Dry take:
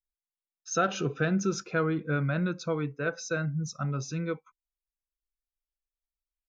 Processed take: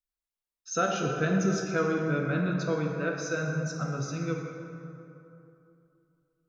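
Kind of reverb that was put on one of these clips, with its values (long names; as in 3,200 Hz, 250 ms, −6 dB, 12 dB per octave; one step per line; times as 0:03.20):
dense smooth reverb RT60 2.9 s, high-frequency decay 0.5×, DRR 0 dB
level −2 dB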